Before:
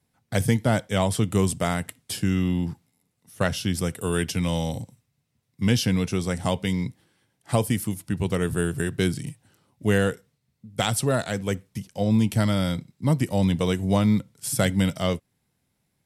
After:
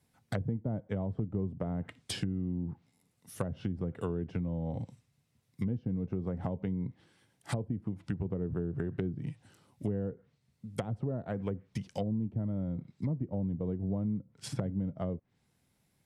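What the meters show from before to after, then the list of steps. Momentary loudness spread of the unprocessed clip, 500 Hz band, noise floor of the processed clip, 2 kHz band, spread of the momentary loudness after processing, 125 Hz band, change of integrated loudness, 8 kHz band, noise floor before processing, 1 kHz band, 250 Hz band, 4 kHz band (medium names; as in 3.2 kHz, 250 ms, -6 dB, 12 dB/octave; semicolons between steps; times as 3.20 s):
9 LU, -12.0 dB, -75 dBFS, -19.5 dB, 6 LU, -9.5 dB, -11.0 dB, -20.5 dB, -75 dBFS, -16.0 dB, -10.5 dB, -17.5 dB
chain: low-pass that closes with the level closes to 460 Hz, closed at -20.5 dBFS; compression 4:1, threshold -32 dBFS, peak gain reduction 13.5 dB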